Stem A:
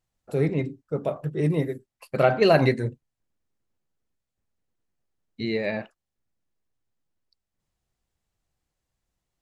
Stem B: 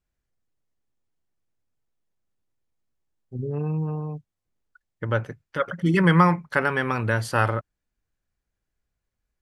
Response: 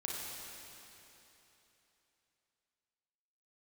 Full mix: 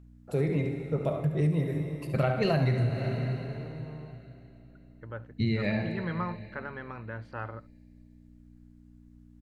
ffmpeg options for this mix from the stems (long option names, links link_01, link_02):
-filter_complex "[0:a]asubboost=boost=8:cutoff=150,aeval=exprs='val(0)+0.00316*(sin(2*PI*60*n/s)+sin(2*PI*2*60*n/s)/2+sin(2*PI*3*60*n/s)/3+sin(2*PI*4*60*n/s)/4+sin(2*PI*5*60*n/s)/5)':channel_layout=same,volume=-4.5dB,asplit=3[link_01][link_02][link_03];[link_02]volume=-4dB[link_04];[link_03]volume=-6.5dB[link_05];[1:a]lowpass=2200,acompressor=mode=upward:threshold=-41dB:ratio=2.5,volume=-16dB,asplit=2[link_06][link_07];[link_07]volume=-21dB[link_08];[2:a]atrim=start_sample=2205[link_09];[link_04][link_09]afir=irnorm=-1:irlink=0[link_10];[link_05][link_08]amix=inputs=2:normalize=0,aecho=0:1:71:1[link_11];[link_01][link_06][link_10][link_11]amix=inputs=4:normalize=0,acompressor=threshold=-23dB:ratio=6"